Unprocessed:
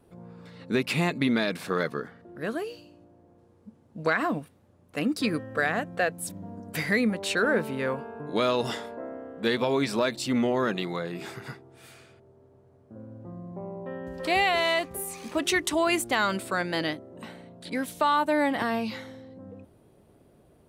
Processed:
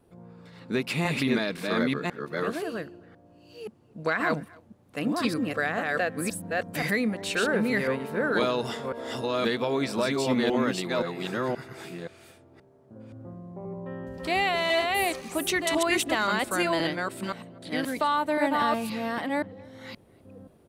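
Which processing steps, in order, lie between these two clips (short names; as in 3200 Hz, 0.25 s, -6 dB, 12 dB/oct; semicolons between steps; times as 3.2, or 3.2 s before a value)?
reverse delay 0.525 s, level -1 dB; speakerphone echo 0.26 s, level -25 dB; gain -2 dB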